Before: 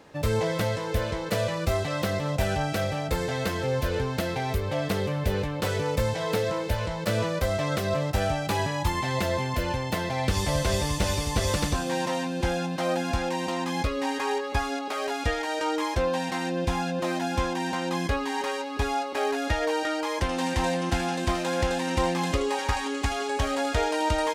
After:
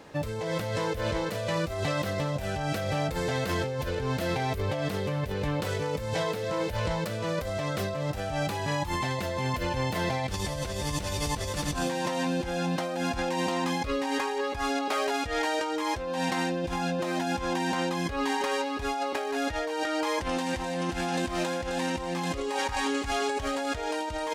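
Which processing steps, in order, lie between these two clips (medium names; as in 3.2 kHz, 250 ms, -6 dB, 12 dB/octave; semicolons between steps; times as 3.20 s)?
compressor with a negative ratio -30 dBFS, ratio -1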